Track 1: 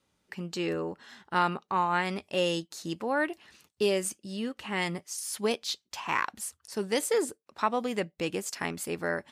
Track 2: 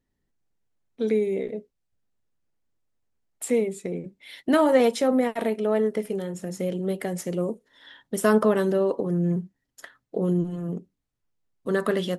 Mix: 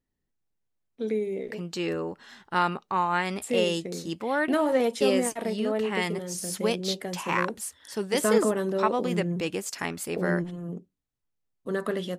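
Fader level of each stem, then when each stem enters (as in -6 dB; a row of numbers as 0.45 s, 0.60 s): +1.5 dB, -5.0 dB; 1.20 s, 0.00 s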